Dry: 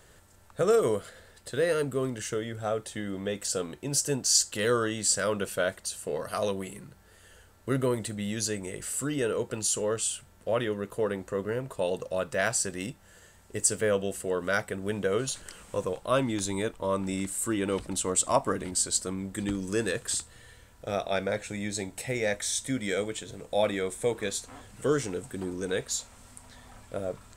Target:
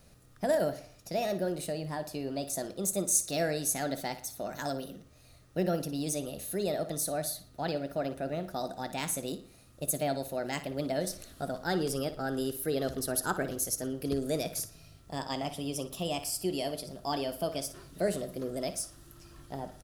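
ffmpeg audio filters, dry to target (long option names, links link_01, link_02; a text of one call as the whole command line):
ffmpeg -i in.wav -filter_complex "[0:a]equalizer=frequency=630:width_type=o:width=0.67:gain=-11,equalizer=frequency=1600:width_type=o:width=0.67:gain=-12,equalizer=frequency=10000:width_type=o:width=0.67:gain=-10,asplit=2[link_01][link_02];[link_02]adelay=80,lowpass=frequency=4800:poles=1,volume=-12dB,asplit=2[link_03][link_04];[link_04]adelay=80,lowpass=frequency=4800:poles=1,volume=0.45,asplit=2[link_05][link_06];[link_06]adelay=80,lowpass=frequency=4800:poles=1,volume=0.45,asplit=2[link_07][link_08];[link_08]adelay=80,lowpass=frequency=4800:poles=1,volume=0.45,asplit=2[link_09][link_10];[link_10]adelay=80,lowpass=frequency=4800:poles=1,volume=0.45[link_11];[link_01][link_03][link_05][link_07][link_09][link_11]amix=inputs=6:normalize=0,asetrate=60858,aresample=44100" out.wav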